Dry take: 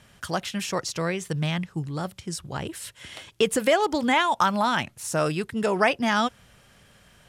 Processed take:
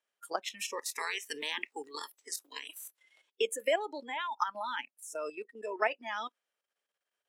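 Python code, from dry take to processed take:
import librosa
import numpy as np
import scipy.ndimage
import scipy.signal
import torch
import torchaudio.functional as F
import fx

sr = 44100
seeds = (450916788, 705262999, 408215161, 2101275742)

y = fx.spec_clip(x, sr, under_db=23, at=(0.78, 2.97), fade=0.02)
y = fx.rider(y, sr, range_db=4, speed_s=2.0)
y = fx.noise_reduce_blind(y, sr, reduce_db=22)
y = fx.level_steps(y, sr, step_db=10)
y = scipy.signal.sosfilt(scipy.signal.butter(4, 370.0, 'highpass', fs=sr, output='sos'), y)
y = F.gain(torch.from_numpy(y), -5.5).numpy()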